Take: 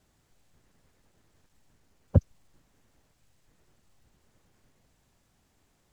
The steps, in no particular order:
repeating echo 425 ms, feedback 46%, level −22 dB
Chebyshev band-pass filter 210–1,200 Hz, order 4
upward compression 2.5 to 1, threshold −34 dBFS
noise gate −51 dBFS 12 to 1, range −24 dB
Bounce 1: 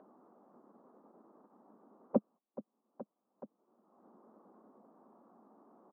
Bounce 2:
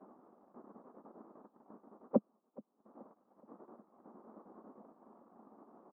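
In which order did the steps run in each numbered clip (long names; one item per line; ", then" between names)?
Chebyshev band-pass filter, then noise gate, then repeating echo, then upward compression
Chebyshev band-pass filter, then upward compression, then noise gate, then repeating echo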